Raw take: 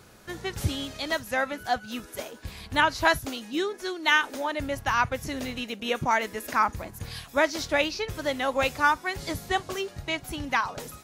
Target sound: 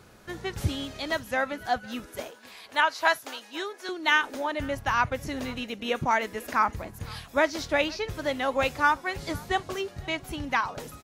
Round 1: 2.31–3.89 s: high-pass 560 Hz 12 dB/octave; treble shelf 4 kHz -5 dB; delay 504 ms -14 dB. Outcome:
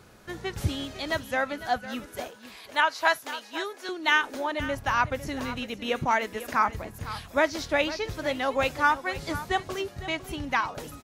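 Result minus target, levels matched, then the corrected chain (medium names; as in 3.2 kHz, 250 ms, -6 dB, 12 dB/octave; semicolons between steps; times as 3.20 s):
echo-to-direct +9.5 dB
2.31–3.89 s: high-pass 560 Hz 12 dB/octave; treble shelf 4 kHz -5 dB; delay 504 ms -23.5 dB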